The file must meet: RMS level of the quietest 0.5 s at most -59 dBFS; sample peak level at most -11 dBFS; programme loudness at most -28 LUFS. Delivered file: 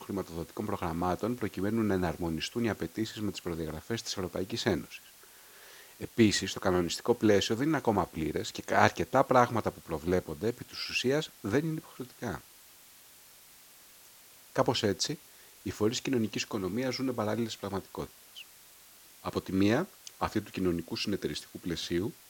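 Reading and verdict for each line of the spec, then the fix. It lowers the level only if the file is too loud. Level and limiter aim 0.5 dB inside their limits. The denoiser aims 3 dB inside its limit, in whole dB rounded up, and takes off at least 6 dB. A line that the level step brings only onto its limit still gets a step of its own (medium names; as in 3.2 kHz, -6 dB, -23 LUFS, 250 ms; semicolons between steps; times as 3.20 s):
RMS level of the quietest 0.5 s -56 dBFS: fail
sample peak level -5.0 dBFS: fail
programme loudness -31.5 LUFS: pass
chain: noise reduction 6 dB, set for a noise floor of -56 dBFS; peak limiter -11.5 dBFS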